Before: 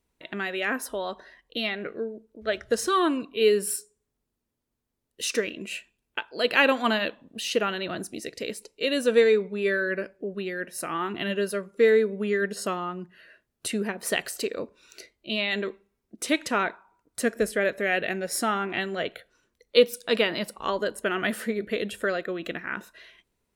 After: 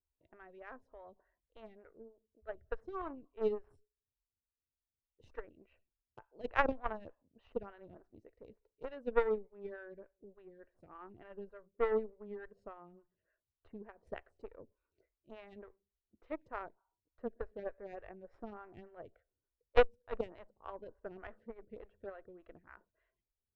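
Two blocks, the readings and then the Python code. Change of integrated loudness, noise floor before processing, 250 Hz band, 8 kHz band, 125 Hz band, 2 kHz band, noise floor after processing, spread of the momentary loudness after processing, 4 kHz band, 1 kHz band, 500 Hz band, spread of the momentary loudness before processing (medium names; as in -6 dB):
-13.0 dB, -81 dBFS, -19.0 dB, under -40 dB, -16.0 dB, -19.0 dB, under -85 dBFS, 24 LU, -27.0 dB, -12.5 dB, -14.0 dB, 14 LU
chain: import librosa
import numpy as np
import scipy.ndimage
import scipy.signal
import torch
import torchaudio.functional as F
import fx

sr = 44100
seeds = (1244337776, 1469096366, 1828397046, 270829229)

y = fx.cheby_harmonics(x, sr, harmonics=(2, 3), levels_db=(-25, -10), full_scale_db=-5.0)
y = scipy.signal.sosfilt(scipy.signal.butter(2, 1100.0, 'lowpass', fs=sr, output='sos'), y)
y = fx.low_shelf_res(y, sr, hz=130.0, db=12.5, q=1.5)
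y = fx.stagger_phaser(y, sr, hz=3.4)
y = y * librosa.db_to_amplitude(5.0)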